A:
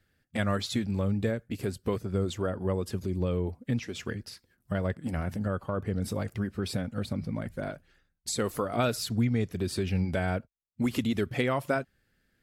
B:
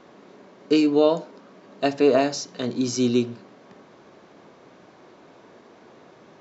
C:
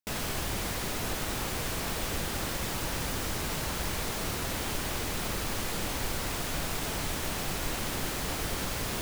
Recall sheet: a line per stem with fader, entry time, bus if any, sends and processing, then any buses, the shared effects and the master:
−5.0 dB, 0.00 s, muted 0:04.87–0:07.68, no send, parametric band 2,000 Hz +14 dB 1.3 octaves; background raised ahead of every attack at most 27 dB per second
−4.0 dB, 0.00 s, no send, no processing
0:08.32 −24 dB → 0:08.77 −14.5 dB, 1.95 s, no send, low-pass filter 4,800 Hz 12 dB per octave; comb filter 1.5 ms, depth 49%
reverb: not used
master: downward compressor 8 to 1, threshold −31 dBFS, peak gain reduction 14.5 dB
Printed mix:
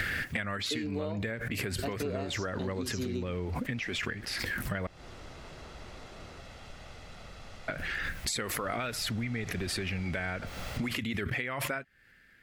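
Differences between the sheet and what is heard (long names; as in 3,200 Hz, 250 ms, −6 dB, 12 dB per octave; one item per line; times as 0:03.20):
stem A −5.0 dB → +3.5 dB
stem C −24.0 dB → −15.5 dB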